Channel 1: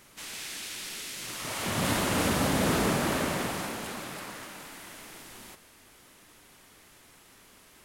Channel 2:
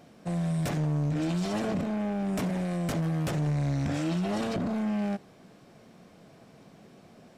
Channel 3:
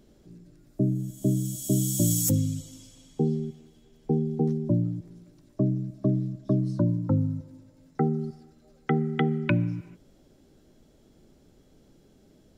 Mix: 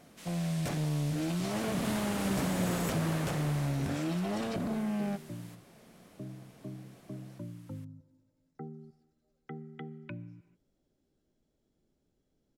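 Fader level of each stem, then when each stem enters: -9.5 dB, -4.0 dB, -19.0 dB; 0.00 s, 0.00 s, 0.60 s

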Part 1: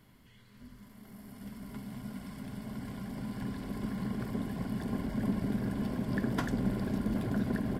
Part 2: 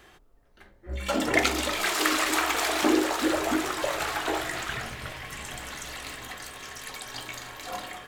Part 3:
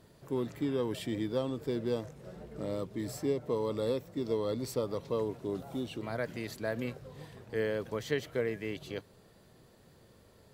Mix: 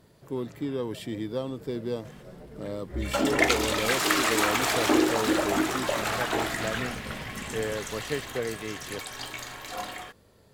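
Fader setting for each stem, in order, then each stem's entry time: -11.0 dB, +0.5 dB, +1.0 dB; 0.00 s, 2.05 s, 0.00 s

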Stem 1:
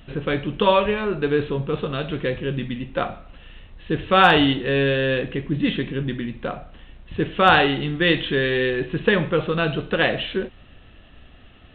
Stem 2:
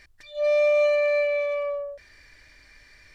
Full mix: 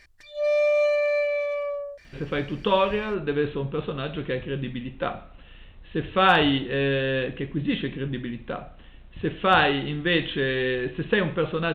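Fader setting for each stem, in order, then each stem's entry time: -4.0 dB, -1.0 dB; 2.05 s, 0.00 s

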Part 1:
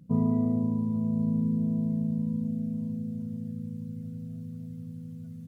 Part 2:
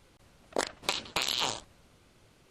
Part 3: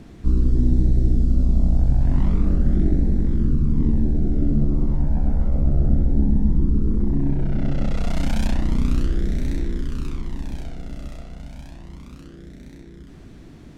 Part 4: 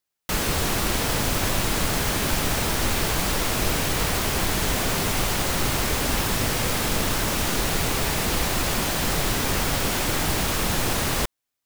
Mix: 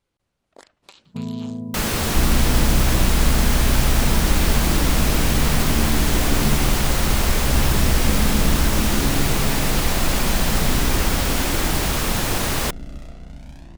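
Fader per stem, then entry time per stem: -3.5 dB, -16.5 dB, -1.5 dB, +1.5 dB; 1.05 s, 0.00 s, 1.90 s, 1.45 s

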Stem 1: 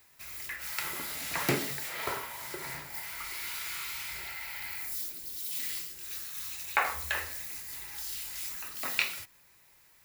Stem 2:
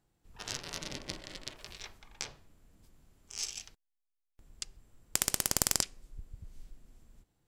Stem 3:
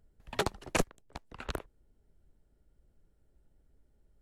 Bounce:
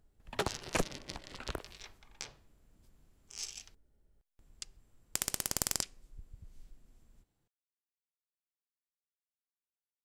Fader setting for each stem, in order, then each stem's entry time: mute, -4.5 dB, -3.0 dB; mute, 0.00 s, 0.00 s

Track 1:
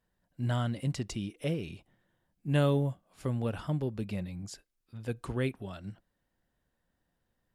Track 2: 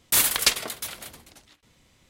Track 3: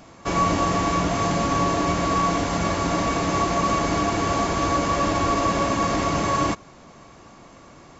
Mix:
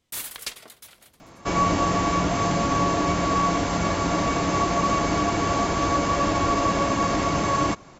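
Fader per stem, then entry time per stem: -18.0 dB, -13.0 dB, -0.5 dB; 1.65 s, 0.00 s, 1.20 s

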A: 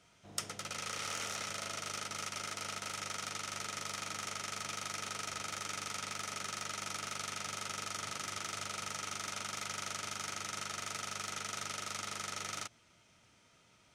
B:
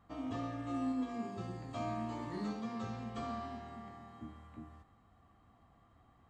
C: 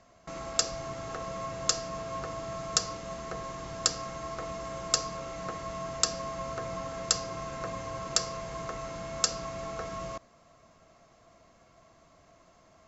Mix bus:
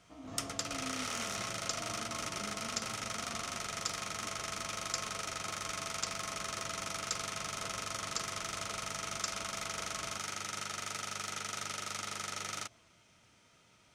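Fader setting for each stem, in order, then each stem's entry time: +1.0 dB, -8.5 dB, -12.0 dB; 0.00 s, 0.00 s, 0.00 s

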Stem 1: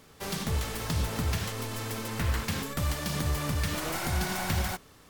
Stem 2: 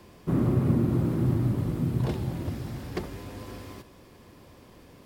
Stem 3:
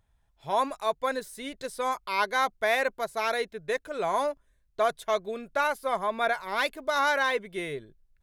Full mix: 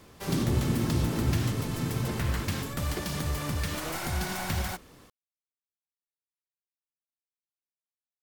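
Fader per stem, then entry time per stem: -1.5 dB, -4.5 dB, mute; 0.00 s, 0.00 s, mute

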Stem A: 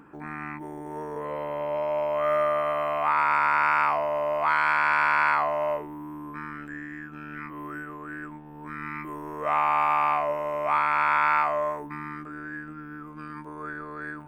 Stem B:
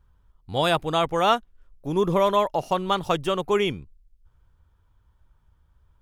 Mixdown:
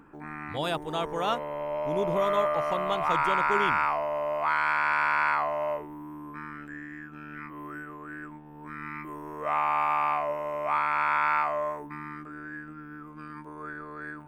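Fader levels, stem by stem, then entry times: -3.0 dB, -8.5 dB; 0.00 s, 0.00 s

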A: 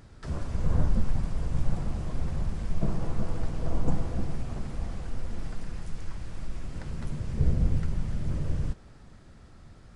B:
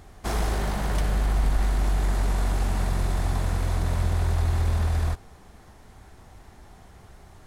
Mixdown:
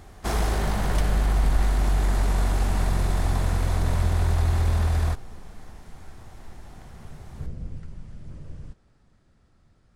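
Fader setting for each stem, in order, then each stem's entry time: -10.5 dB, +1.5 dB; 0.00 s, 0.00 s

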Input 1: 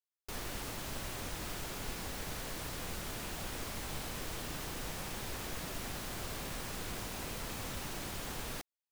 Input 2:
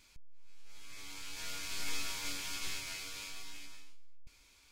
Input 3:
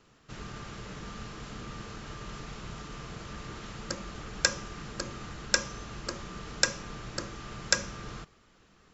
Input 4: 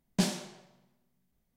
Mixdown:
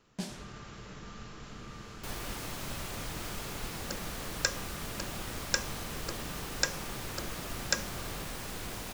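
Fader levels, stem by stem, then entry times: +1.0 dB, -13.0 dB, -4.5 dB, -10.5 dB; 1.75 s, 0.75 s, 0.00 s, 0.00 s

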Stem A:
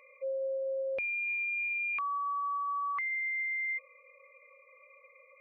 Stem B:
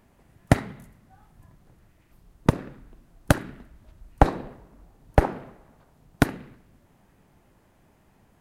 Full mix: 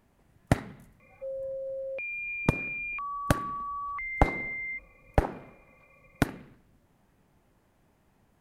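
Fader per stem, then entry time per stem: -2.0 dB, -6.0 dB; 1.00 s, 0.00 s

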